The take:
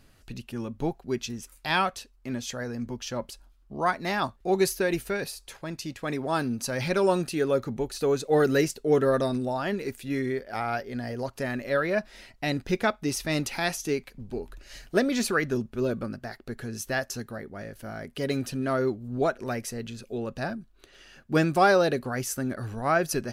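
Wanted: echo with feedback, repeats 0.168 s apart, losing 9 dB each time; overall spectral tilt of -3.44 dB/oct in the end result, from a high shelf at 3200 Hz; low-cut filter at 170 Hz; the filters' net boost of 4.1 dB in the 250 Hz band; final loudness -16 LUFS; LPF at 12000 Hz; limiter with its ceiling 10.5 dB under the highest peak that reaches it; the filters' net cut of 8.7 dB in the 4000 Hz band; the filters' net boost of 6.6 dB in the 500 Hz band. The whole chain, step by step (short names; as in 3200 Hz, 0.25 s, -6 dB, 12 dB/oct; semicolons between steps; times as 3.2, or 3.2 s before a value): HPF 170 Hz; LPF 12000 Hz; bell 250 Hz +3.5 dB; bell 500 Hz +7.5 dB; high shelf 3200 Hz -3.5 dB; bell 4000 Hz -8.5 dB; limiter -15 dBFS; feedback echo 0.168 s, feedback 35%, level -9 dB; gain +10.5 dB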